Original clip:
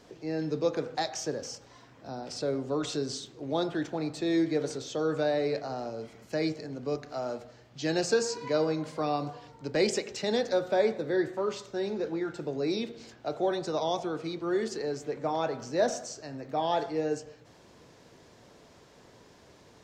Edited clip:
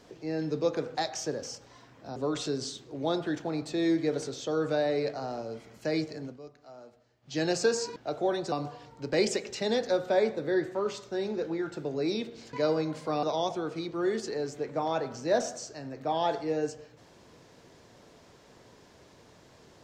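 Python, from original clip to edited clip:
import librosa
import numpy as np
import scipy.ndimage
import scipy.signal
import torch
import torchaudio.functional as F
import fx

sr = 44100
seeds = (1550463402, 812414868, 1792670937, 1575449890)

y = fx.edit(x, sr, fx.cut(start_s=2.16, length_s=0.48),
    fx.fade_down_up(start_s=6.73, length_s=1.1, db=-15.0, fade_s=0.14),
    fx.swap(start_s=8.44, length_s=0.7, other_s=13.15, other_length_s=0.56), tone=tone)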